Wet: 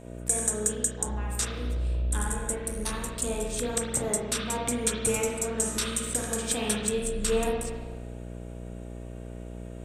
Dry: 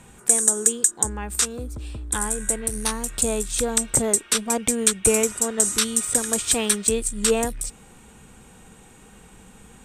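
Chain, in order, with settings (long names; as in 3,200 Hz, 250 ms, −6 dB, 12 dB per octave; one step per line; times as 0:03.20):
hum with harmonics 60 Hz, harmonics 11, −39 dBFS −1 dB per octave
spring reverb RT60 1.3 s, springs 33/49 ms, chirp 45 ms, DRR −2.5 dB
level −9 dB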